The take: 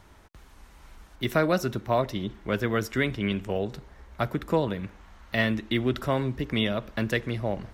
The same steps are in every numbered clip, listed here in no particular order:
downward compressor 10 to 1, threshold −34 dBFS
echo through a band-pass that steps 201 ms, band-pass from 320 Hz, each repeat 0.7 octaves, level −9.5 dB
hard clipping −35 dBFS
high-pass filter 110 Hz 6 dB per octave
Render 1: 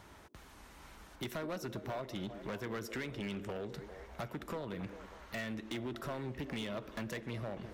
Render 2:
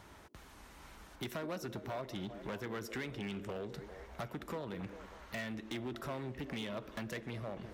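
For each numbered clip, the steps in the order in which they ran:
high-pass filter, then downward compressor, then echo through a band-pass that steps, then hard clipping
downward compressor, then echo through a band-pass that steps, then hard clipping, then high-pass filter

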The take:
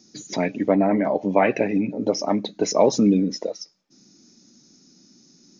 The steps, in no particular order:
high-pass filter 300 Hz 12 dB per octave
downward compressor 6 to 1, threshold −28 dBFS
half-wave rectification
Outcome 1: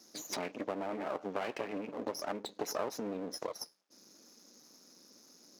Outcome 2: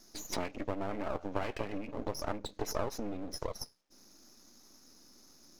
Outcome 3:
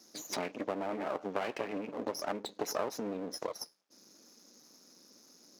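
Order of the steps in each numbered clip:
downward compressor, then half-wave rectification, then high-pass filter
downward compressor, then high-pass filter, then half-wave rectification
half-wave rectification, then downward compressor, then high-pass filter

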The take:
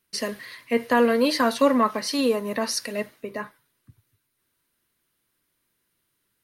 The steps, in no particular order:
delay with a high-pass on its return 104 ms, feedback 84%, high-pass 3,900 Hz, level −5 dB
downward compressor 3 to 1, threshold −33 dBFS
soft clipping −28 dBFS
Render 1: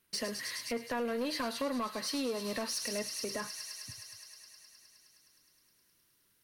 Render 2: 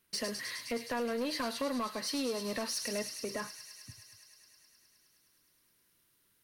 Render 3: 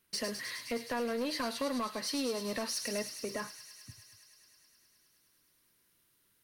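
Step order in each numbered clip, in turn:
delay with a high-pass on its return, then downward compressor, then soft clipping
downward compressor, then delay with a high-pass on its return, then soft clipping
downward compressor, then soft clipping, then delay with a high-pass on its return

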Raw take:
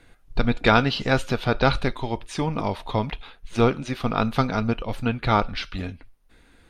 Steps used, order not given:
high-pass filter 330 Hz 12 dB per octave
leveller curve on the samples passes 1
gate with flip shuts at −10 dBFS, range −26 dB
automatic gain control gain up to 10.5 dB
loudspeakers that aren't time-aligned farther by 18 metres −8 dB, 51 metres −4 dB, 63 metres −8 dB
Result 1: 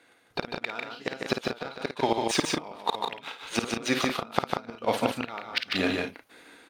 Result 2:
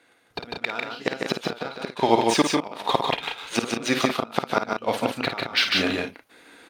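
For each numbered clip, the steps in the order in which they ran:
leveller curve on the samples, then automatic gain control, then high-pass filter, then gate with flip, then loudspeakers that aren't time-aligned
leveller curve on the samples, then gate with flip, then loudspeakers that aren't time-aligned, then automatic gain control, then high-pass filter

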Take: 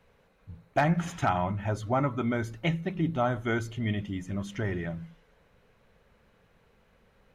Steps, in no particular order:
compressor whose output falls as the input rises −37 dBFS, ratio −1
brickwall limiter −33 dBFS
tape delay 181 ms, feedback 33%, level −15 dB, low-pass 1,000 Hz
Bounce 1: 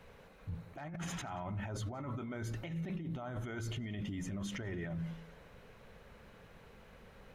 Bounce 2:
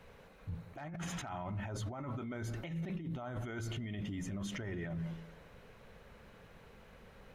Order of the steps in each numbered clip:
compressor whose output falls as the input rises, then tape delay, then brickwall limiter
tape delay, then compressor whose output falls as the input rises, then brickwall limiter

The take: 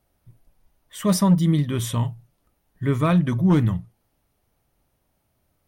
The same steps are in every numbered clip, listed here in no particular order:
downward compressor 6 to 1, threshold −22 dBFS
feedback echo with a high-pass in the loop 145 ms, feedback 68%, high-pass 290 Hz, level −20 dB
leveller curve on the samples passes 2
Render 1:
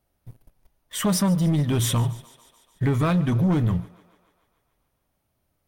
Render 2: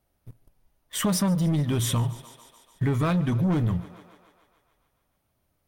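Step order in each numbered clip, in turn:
downward compressor, then leveller curve on the samples, then feedback echo with a high-pass in the loop
leveller curve on the samples, then feedback echo with a high-pass in the loop, then downward compressor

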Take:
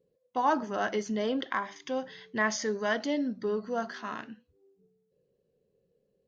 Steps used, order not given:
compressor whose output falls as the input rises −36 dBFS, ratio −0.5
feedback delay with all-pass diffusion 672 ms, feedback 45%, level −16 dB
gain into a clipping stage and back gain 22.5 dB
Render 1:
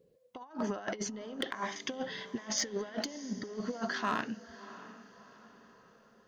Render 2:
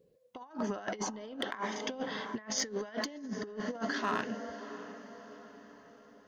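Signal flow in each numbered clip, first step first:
compressor whose output falls as the input rises, then feedback delay with all-pass diffusion, then gain into a clipping stage and back
feedback delay with all-pass diffusion, then compressor whose output falls as the input rises, then gain into a clipping stage and back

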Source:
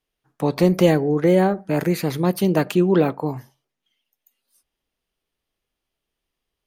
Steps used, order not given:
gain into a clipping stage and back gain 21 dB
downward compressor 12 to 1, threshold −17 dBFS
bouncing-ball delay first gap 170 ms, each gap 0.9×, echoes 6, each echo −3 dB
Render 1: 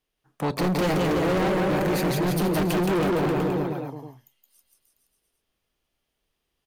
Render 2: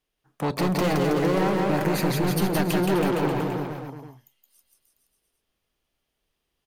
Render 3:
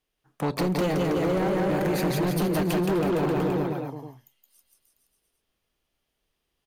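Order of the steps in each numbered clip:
bouncing-ball delay, then gain into a clipping stage and back, then downward compressor
gain into a clipping stage and back, then bouncing-ball delay, then downward compressor
bouncing-ball delay, then downward compressor, then gain into a clipping stage and back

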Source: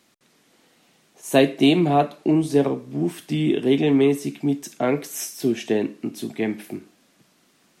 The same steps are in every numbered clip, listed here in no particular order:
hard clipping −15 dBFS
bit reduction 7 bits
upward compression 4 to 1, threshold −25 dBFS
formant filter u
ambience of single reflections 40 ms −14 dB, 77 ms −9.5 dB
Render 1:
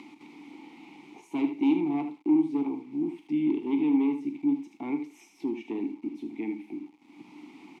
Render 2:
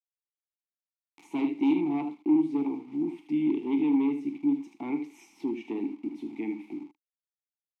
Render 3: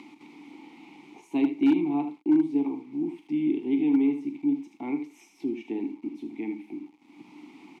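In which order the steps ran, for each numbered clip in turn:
hard clipping, then ambience of single reflections, then upward compression, then bit reduction, then formant filter
bit reduction, then ambience of single reflections, then hard clipping, then upward compression, then formant filter
ambience of single reflections, then upward compression, then bit reduction, then formant filter, then hard clipping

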